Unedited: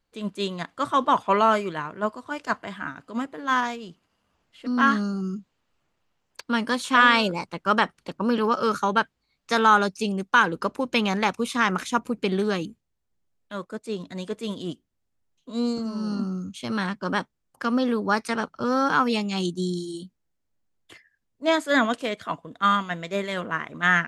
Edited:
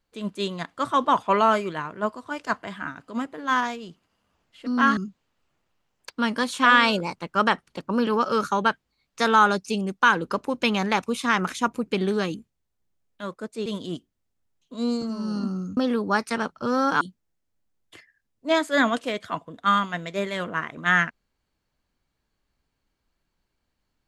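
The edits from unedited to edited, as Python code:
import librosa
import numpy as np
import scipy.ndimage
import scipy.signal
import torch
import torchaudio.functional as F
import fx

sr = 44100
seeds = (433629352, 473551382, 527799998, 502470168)

y = fx.edit(x, sr, fx.cut(start_s=4.97, length_s=0.31),
    fx.cut(start_s=13.97, length_s=0.45),
    fx.cut(start_s=16.53, length_s=1.22),
    fx.cut(start_s=18.99, length_s=0.99), tone=tone)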